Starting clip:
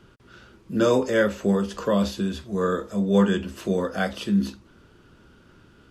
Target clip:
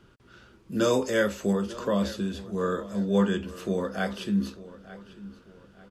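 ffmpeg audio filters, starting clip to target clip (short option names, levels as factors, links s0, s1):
-filter_complex "[0:a]asettb=1/sr,asplit=3[s0][s1][s2];[s0]atrim=end=0.724[s3];[s1]atrim=start=0.72:end=1.53,asetpts=PTS-STARTPTS,afade=t=in:d=0.004:c=qsin,afade=t=out:st=0.806:d=0.004:c=qsin,highshelf=f=3800:g=8.5[s4];[s2]atrim=start=1.526[s5];[s3][s4]acrossfade=d=0.004:c1=hsin:c2=qsin[s6];[s6][s5]acrossfade=d=0.004:c1=qsin:c2=hsin,asplit=2[s7][s8];[s8]adelay=894,lowpass=f=4400:p=1,volume=0.141,asplit=2[s9][s10];[s10]adelay=894,lowpass=f=4400:p=1,volume=0.36,asplit=2[s11][s12];[s12]adelay=894,lowpass=f=4400:p=1,volume=0.36[s13];[s7][s9][s11][s13]amix=inputs=4:normalize=0,volume=0.631"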